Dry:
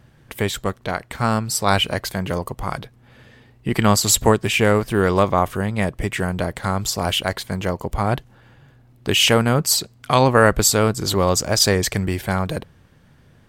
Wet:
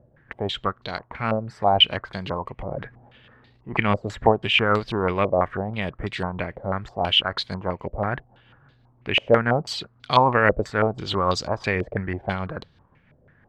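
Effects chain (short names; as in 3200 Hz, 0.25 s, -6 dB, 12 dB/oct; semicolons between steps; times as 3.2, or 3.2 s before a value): tremolo 6.1 Hz, depth 33%; 2.59–3.77 transient shaper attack -8 dB, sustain +8 dB; stepped low-pass 6.1 Hz 570–4100 Hz; gain -5.5 dB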